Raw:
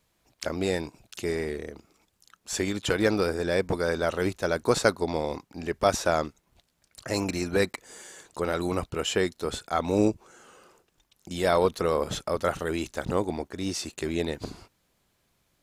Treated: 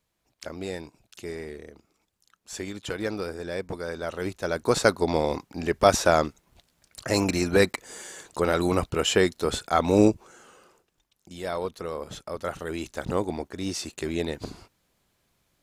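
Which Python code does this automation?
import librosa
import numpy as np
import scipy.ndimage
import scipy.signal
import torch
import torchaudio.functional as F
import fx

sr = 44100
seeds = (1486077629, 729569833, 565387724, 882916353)

y = fx.gain(x, sr, db=fx.line((3.95, -6.5), (5.14, 4.5), (10.04, 4.5), (11.35, -8.0), (12.08, -8.0), (13.12, 0.0)))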